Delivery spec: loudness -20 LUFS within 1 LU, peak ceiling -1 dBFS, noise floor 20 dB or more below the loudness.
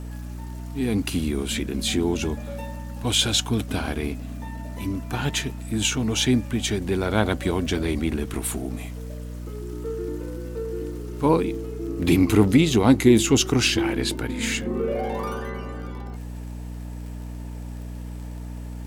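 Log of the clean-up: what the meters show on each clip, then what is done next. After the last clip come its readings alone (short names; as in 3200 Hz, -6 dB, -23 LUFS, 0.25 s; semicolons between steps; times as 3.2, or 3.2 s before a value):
ticks 25/s; hum 60 Hz; harmonics up to 300 Hz; hum level -31 dBFS; loudness -23.5 LUFS; peak -4.0 dBFS; loudness target -20.0 LUFS
-> de-click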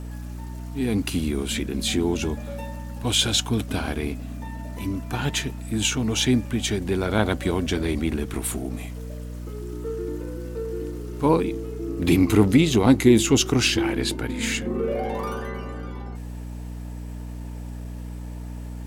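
ticks 0.27/s; hum 60 Hz; harmonics up to 300 Hz; hum level -31 dBFS
-> de-hum 60 Hz, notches 5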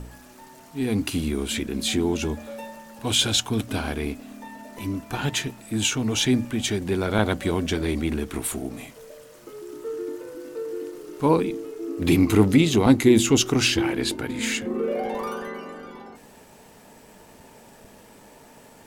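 hum none; loudness -23.5 LUFS; peak -5.0 dBFS; loudness target -20.0 LUFS
-> gain +3.5 dB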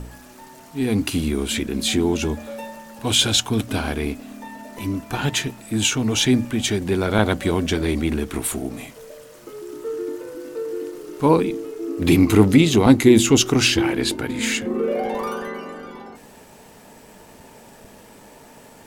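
loudness -20.0 LUFS; peak -1.5 dBFS; noise floor -46 dBFS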